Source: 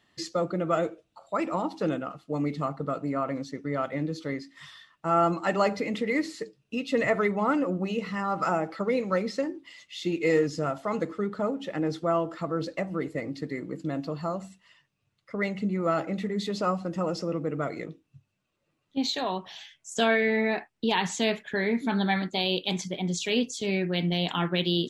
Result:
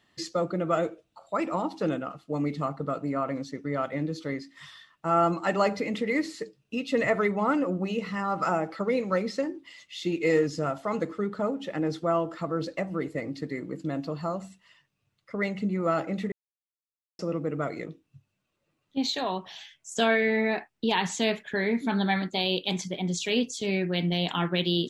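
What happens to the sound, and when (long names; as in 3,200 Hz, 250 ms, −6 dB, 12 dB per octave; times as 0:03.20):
0:16.32–0:17.19: silence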